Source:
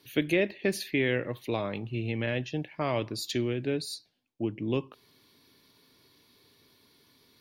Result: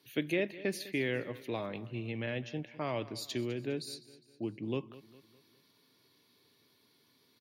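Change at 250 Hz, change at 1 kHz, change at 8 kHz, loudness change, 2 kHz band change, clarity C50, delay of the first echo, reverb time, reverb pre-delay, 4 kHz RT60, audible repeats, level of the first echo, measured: -6.0 dB, -6.0 dB, -6.0 dB, -6.0 dB, -6.0 dB, no reverb, 204 ms, no reverb, no reverb, no reverb, 3, -17.5 dB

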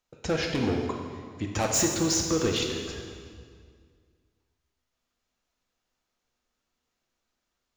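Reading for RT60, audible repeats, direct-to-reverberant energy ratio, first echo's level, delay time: 2.0 s, no echo, 1.0 dB, no echo, no echo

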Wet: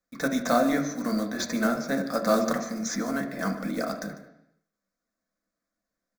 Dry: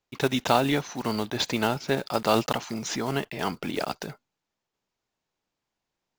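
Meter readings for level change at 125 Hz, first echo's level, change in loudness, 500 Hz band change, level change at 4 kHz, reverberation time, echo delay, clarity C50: -5.5 dB, -17.0 dB, -0.5 dB, -0.5 dB, -7.0 dB, 0.80 s, 148 ms, 8.5 dB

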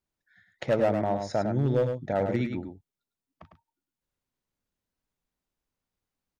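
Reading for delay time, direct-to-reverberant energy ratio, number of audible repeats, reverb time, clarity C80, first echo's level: 103 ms, no reverb, 1, no reverb, no reverb, -6.5 dB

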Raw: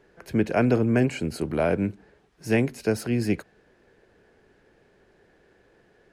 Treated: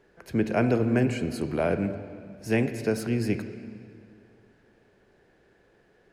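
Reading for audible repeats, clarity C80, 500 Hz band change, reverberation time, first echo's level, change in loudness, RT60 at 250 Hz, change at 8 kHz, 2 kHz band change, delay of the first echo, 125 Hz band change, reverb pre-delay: no echo, 11.0 dB, -2.0 dB, 2.2 s, no echo, -2.0 dB, 2.5 s, -2.5 dB, -2.0 dB, no echo, -1.5 dB, 28 ms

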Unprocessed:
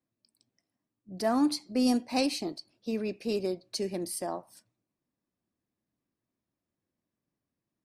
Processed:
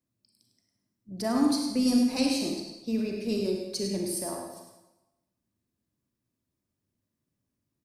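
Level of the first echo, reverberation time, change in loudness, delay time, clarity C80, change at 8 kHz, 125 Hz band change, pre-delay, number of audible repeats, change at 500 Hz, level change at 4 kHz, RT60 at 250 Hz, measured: -7.0 dB, 1.0 s, +2.5 dB, 102 ms, 3.5 dB, +4.5 dB, +4.5 dB, 32 ms, 1, 0.0 dB, +2.5 dB, 0.90 s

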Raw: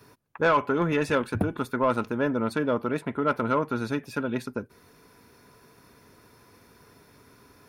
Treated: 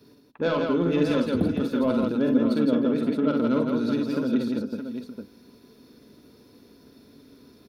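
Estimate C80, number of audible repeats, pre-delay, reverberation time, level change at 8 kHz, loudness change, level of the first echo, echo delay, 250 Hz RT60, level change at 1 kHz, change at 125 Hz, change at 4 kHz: no reverb, 5, no reverb, no reverb, no reading, +2.5 dB, -6.0 dB, 47 ms, no reverb, -7.5 dB, 0.0 dB, +3.0 dB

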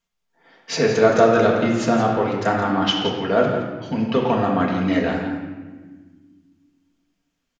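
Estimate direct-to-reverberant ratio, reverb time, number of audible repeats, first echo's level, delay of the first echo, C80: -2.5 dB, 1.4 s, 1, -8.5 dB, 169 ms, 4.0 dB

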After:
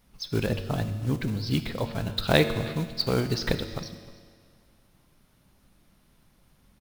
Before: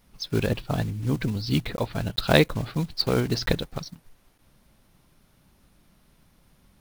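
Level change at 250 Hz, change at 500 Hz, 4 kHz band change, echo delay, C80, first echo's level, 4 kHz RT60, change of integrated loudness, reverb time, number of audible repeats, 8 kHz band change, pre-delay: -2.0 dB, -2.0 dB, -2.0 dB, 310 ms, 11.0 dB, -21.0 dB, 1.8 s, -2.0 dB, 1.9 s, 1, -2.0 dB, 9 ms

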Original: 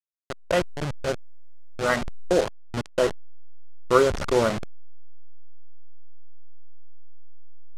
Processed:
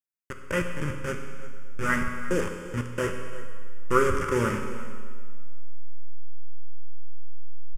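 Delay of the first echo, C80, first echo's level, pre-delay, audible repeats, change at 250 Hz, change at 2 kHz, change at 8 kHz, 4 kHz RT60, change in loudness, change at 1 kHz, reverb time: 347 ms, 7.0 dB, -16.5 dB, 12 ms, 1, -0.5 dB, +1.0 dB, -2.5 dB, 1.7 s, -3.5 dB, -2.0 dB, 1.8 s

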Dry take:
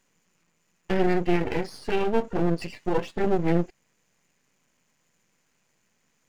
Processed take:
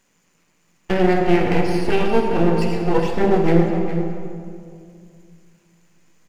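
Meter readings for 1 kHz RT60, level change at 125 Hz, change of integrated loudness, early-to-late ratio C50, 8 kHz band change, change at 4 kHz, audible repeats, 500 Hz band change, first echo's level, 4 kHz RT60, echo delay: 2.1 s, +8.5 dB, +7.5 dB, 2.5 dB, no reading, +7.5 dB, 1, +7.5 dB, -11.0 dB, 1.4 s, 410 ms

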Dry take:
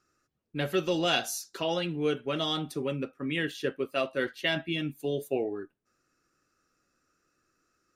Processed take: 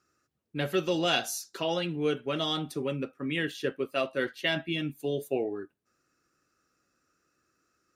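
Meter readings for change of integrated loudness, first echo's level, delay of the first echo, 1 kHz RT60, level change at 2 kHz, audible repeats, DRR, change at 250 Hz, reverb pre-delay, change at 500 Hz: 0.0 dB, no echo, no echo, no reverb, 0.0 dB, no echo, no reverb, 0.0 dB, no reverb, 0.0 dB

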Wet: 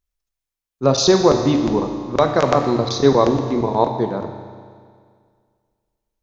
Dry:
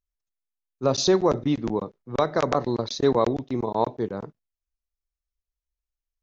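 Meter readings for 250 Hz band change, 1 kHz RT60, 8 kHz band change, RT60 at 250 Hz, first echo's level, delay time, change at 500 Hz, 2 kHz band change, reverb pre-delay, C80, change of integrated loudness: +7.5 dB, 2.0 s, no reading, 2.0 s, no echo, no echo, +7.0 dB, +7.0 dB, 9 ms, 7.5 dB, +7.0 dB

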